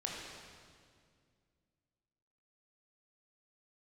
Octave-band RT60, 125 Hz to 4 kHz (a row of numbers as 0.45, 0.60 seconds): 2.9, 2.8, 2.3, 1.9, 1.8, 1.8 seconds